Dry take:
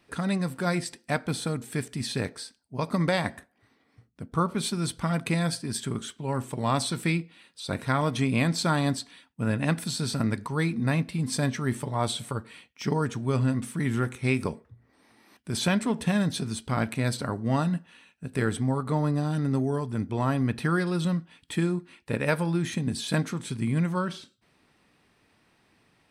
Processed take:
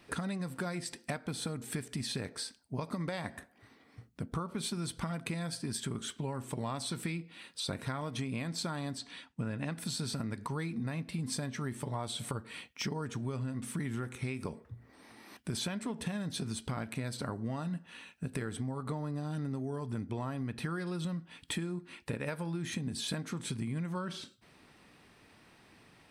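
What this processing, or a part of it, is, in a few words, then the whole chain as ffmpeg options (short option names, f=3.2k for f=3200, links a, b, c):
serial compression, leveller first: -filter_complex "[0:a]acompressor=threshold=-28dB:ratio=2,acompressor=threshold=-39dB:ratio=5,asettb=1/sr,asplit=3[a][b][c];[a]atrim=end=8.984[d];[b]atrim=start=8.98:end=9.72,asetpts=PTS-STARTPTS,afade=t=in:d=0.004:c=qsin,afade=t=out:st=0.736:d=0.004:c=qsin,lowpass=7.8k[e];[c]atrim=start=9.716[f];[d][e]acrossfade=d=0.004:c1=hsin:c2=qsin[g];[g][f]acrossfade=d=0.004:c1=qsin:c2=hsin,volume=4.5dB"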